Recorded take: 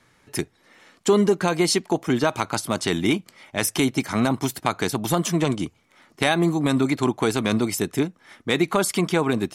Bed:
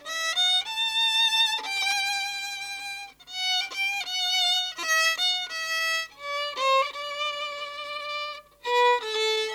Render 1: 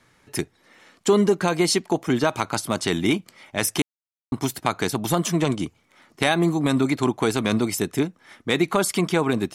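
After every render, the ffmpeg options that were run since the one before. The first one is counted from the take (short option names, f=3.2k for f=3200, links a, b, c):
-filter_complex "[0:a]asplit=3[a][b][c];[a]atrim=end=3.82,asetpts=PTS-STARTPTS,afade=t=out:st=3.816:d=0.004:c=hsin[d];[b]atrim=start=3.82:end=4.32,asetpts=PTS-STARTPTS,volume=0[e];[c]atrim=start=4.32,asetpts=PTS-STARTPTS,afade=t=in:d=0.004:c=hsin[f];[d][e][f]concat=n=3:v=0:a=1"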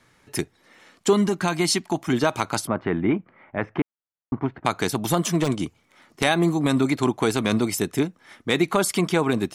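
-filter_complex "[0:a]asettb=1/sr,asplit=3[a][b][c];[a]atrim=end=1.134[d];[b]atrim=start=1.13:end=2.13,asetpts=PTS-STARTPTS,afade=t=in:d=0.004:c=qsin,afade=t=out:st=0.996:d=0.004:c=qsin,equalizer=f=470:t=o:w=0.39:g=-14[e];[c]atrim=start=2.126[f];[d][e]acrossfade=d=0.004:c1=hsin:c2=qsin[g];[g][f]acrossfade=d=0.004:c1=qsin:c2=hsin,asplit=3[h][i][j];[h]afade=t=out:st=2.66:d=0.02[k];[i]lowpass=f=1.9k:w=0.5412,lowpass=f=1.9k:w=1.3066,afade=t=in:st=2.66:d=0.02,afade=t=out:st=4.64:d=0.02[l];[j]afade=t=in:st=4.64:d=0.02[m];[k][l][m]amix=inputs=3:normalize=0,asettb=1/sr,asplit=3[n][o][p];[n]atrim=end=5.294[q];[o]atrim=start=5.29:end=6.23,asetpts=PTS-STARTPTS,afade=t=in:d=0.004:c=qsin,afade=t=out:st=0.936:d=0.004:c=qsin,aeval=exprs='0.237*(abs(mod(val(0)/0.237+3,4)-2)-1)':c=same[r];[p]atrim=start=6.226[s];[q][r]acrossfade=d=0.004:c1=hsin:c2=qsin[t];[t][s]acrossfade=d=0.004:c1=qsin:c2=hsin"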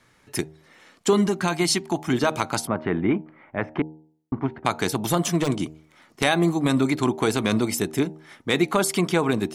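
-af "bandreject=f=77.87:t=h:w=4,bandreject=f=155.74:t=h:w=4,bandreject=f=233.61:t=h:w=4,bandreject=f=311.48:t=h:w=4,bandreject=f=389.35:t=h:w=4,bandreject=f=467.22:t=h:w=4,bandreject=f=545.09:t=h:w=4,bandreject=f=622.96:t=h:w=4,bandreject=f=700.83:t=h:w=4,bandreject=f=778.7:t=h:w=4,bandreject=f=856.57:t=h:w=4,bandreject=f=934.44:t=h:w=4"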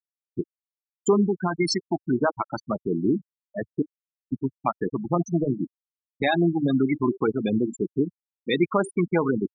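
-af "afftfilt=real='re*gte(hypot(re,im),0.2)':imag='im*gte(hypot(re,im),0.2)':win_size=1024:overlap=0.75,equalizer=f=90:t=o:w=0.71:g=-7.5"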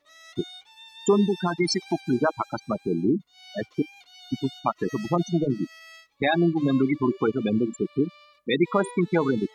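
-filter_complex "[1:a]volume=-21dB[a];[0:a][a]amix=inputs=2:normalize=0"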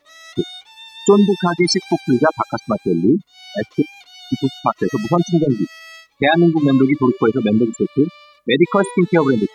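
-af "volume=8.5dB,alimiter=limit=-1dB:level=0:latency=1"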